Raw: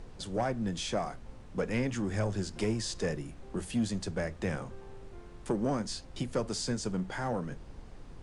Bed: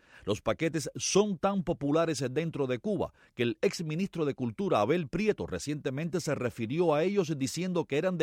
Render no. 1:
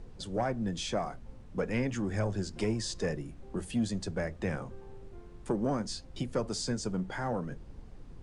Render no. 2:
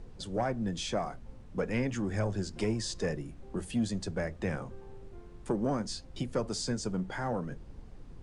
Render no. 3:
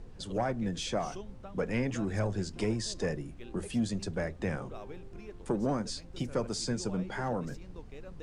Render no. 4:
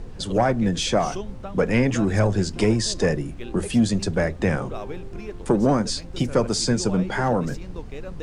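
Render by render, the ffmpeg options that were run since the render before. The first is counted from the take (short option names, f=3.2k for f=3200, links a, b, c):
-af "afftdn=nr=6:nf=-49"
-af anull
-filter_complex "[1:a]volume=-20dB[a];[0:a][a]amix=inputs=2:normalize=0"
-af "volume=11.5dB"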